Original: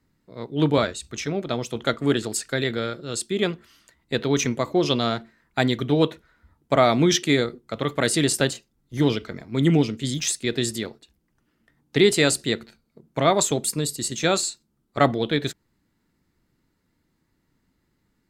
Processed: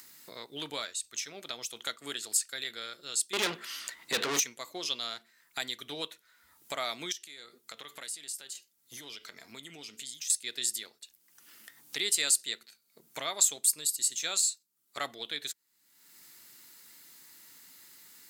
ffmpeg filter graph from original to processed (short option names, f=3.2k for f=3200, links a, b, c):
-filter_complex "[0:a]asettb=1/sr,asplit=3[a][b][c];[a]atrim=end=3.334[d];[b]atrim=start=3.33:end=4.4,asetpts=PTS-STARTPTS,afade=t=in:d=0.004:c=qsin,afade=t=out:st=1.066:d=0.004:c=qsin,lowshelf=f=350:g=12,asplit=2[e][f];[f]highpass=f=720:p=1,volume=32dB,asoftclip=type=tanh:threshold=-2dB[g];[e][g]amix=inputs=2:normalize=0,lowpass=f=1.7k:p=1,volume=-6dB[h];[c]atrim=start=4.396[i];[d][h]acrossfade=d=0.004:c1=hsin:c2=qsin[j];[j][i]acrossfade=d=0.004:c1=qsin:c2=hsin,asettb=1/sr,asplit=3[k][l][m];[k]atrim=end=7.124[n];[l]atrim=start=7.12:end=10.3,asetpts=PTS-STARTPTS,afade=t=in:d=0.004:c=qsin,afade=t=out:st=3.176:d=0.004:c=qsin,acompressor=threshold=-36dB:ratio=3:attack=3.2:release=140:knee=1:detection=peak,flanger=delay=4.1:depth=1.6:regen=84:speed=1.7:shape=triangular[o];[m]atrim=start=10.296[p];[n][o]acrossfade=d=0.004:c1=hsin:c2=qsin[q];[q][p]acrossfade=d=0.004:c1=qsin:c2=hsin,aderivative,acompressor=mode=upward:threshold=-32dB:ratio=2.5"